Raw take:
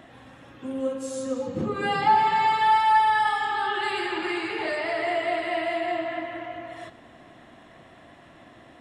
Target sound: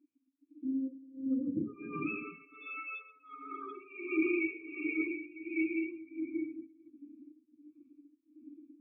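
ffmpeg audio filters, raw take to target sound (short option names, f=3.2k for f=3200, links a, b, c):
-filter_complex "[0:a]dynaudnorm=f=800:g=3:m=7dB,highpass=83,acontrast=84,asplit=3[a][b][c];[a]bandpass=f=300:t=q:w=8,volume=0dB[d];[b]bandpass=f=870:t=q:w=8,volume=-6dB[e];[c]bandpass=f=2.24k:t=q:w=8,volume=-9dB[f];[d][e][f]amix=inputs=3:normalize=0,equalizer=f=2k:t=o:w=0.53:g=8,afftdn=nr=36:nf=-32,tremolo=f=1.4:d=0.89,asubboost=boost=8:cutoff=120,afftfilt=real='re*eq(mod(floor(b*sr/1024/550),2),0)':imag='im*eq(mod(floor(b*sr/1024/550),2),0)':win_size=1024:overlap=0.75"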